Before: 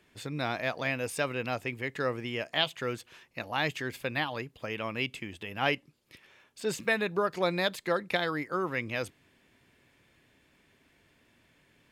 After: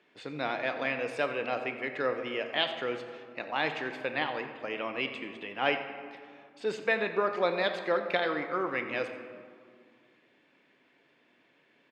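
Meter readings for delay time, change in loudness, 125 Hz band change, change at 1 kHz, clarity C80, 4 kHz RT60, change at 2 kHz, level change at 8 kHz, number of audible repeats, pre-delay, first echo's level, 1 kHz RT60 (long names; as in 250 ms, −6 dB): 89 ms, 0.0 dB, −9.5 dB, +1.0 dB, 8.5 dB, 1.0 s, 0.0 dB, below −10 dB, 1, 4 ms, −15.0 dB, 2.1 s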